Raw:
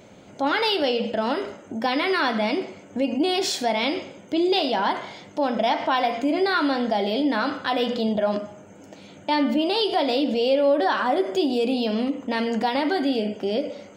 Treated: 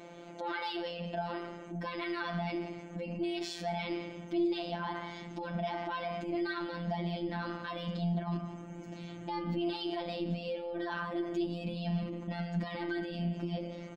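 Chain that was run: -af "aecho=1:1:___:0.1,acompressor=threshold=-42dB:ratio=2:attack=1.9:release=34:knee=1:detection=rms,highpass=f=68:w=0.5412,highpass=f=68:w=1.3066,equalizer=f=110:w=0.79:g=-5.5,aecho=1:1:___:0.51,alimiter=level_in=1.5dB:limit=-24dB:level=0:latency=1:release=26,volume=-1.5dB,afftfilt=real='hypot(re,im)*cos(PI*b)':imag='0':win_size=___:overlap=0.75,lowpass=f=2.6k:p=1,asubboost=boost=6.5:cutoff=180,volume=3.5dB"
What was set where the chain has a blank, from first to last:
173, 3.2, 1024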